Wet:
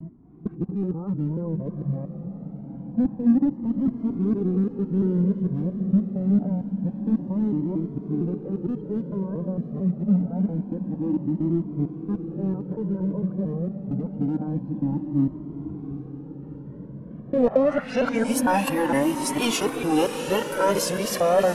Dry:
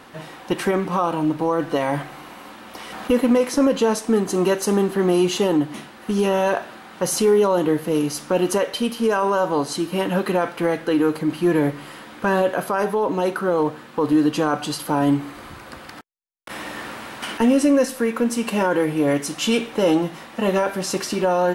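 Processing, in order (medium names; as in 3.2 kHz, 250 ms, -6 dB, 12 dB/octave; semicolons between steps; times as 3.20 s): time reversed locally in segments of 228 ms; dynamic bell 910 Hz, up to +5 dB, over -33 dBFS, Q 1.6; low-pass sweep 200 Hz -> 12 kHz, 17.19–18.33 s; in parallel at -10 dB: hard clipper -22 dBFS, distortion -6 dB; on the sum: vibrato 3 Hz 80 cents; on a send: echo that smears into a reverb 783 ms, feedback 67%, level -10 dB; on the sum: Shepard-style flanger rising 0.26 Hz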